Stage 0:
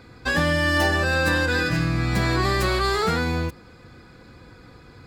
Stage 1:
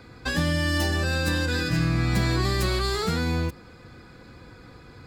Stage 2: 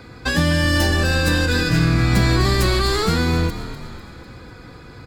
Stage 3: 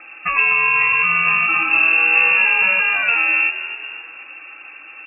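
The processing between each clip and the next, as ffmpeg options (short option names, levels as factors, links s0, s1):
-filter_complex "[0:a]acrossover=split=340|3000[s0][s1][s2];[s1]acompressor=threshold=0.0282:ratio=4[s3];[s0][s3][s2]amix=inputs=3:normalize=0"
-filter_complex "[0:a]asplit=6[s0][s1][s2][s3][s4][s5];[s1]adelay=249,afreqshift=-51,volume=0.251[s6];[s2]adelay=498,afreqshift=-102,volume=0.13[s7];[s3]adelay=747,afreqshift=-153,volume=0.0676[s8];[s4]adelay=996,afreqshift=-204,volume=0.0355[s9];[s5]adelay=1245,afreqshift=-255,volume=0.0184[s10];[s0][s6][s7][s8][s9][s10]amix=inputs=6:normalize=0,volume=2.11"
-af "lowpass=f=2400:t=q:w=0.5098,lowpass=f=2400:t=q:w=0.6013,lowpass=f=2400:t=q:w=0.9,lowpass=f=2400:t=q:w=2.563,afreqshift=-2800,volume=1.19"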